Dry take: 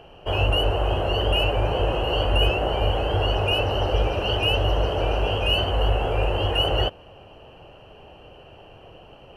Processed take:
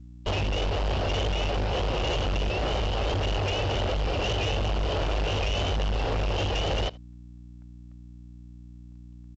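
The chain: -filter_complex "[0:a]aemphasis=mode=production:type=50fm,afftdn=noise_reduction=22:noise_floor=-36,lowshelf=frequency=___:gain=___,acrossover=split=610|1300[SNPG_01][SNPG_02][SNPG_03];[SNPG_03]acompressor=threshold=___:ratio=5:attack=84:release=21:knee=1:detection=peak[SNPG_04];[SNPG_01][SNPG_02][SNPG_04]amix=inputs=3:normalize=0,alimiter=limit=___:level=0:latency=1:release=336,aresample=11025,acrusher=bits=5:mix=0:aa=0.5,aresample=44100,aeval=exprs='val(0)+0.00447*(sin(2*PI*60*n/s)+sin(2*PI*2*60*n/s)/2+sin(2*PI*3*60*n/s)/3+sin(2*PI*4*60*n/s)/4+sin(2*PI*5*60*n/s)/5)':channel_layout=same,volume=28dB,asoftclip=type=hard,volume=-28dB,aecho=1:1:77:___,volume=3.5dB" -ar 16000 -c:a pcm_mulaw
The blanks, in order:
260, 4.5, -37dB, -15.5dB, 0.0668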